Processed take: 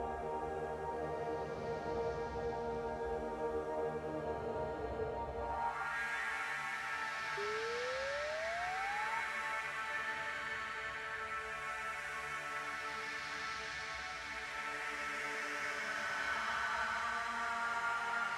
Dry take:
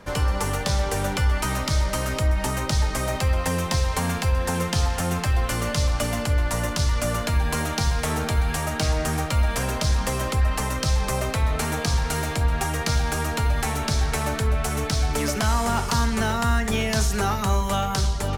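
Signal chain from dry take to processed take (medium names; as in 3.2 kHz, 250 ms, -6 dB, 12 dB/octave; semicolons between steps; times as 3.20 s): Paulstretch 5.7×, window 0.50 s, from 12.55 s; band-pass sweep 520 Hz -> 1.8 kHz, 5.34–6.02 s; painted sound rise, 7.37–9.21 s, 400–930 Hz -38 dBFS; trim -4 dB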